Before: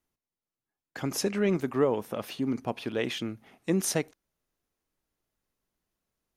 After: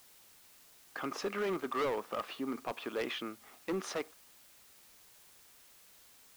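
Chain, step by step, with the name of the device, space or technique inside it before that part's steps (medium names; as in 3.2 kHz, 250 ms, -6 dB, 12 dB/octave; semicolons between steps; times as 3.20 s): drive-through speaker (band-pass 350–3500 Hz; peaking EQ 1.2 kHz +11 dB 0.37 oct; hard clipper -27 dBFS, distortion -8 dB; white noise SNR 20 dB); trim -2.5 dB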